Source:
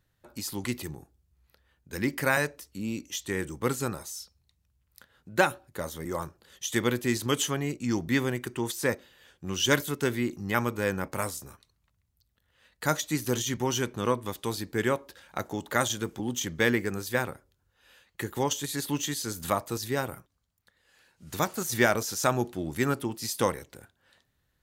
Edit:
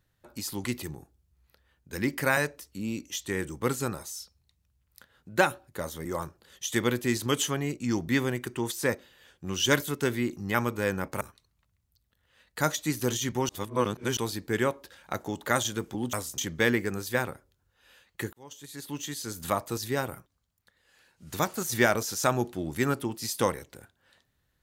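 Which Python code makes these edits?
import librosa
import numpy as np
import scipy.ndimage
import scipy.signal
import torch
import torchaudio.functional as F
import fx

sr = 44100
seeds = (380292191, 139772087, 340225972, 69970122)

y = fx.edit(x, sr, fx.move(start_s=11.21, length_s=0.25, to_s=16.38),
    fx.reverse_span(start_s=13.74, length_s=0.68),
    fx.fade_in_span(start_s=18.33, length_s=1.3), tone=tone)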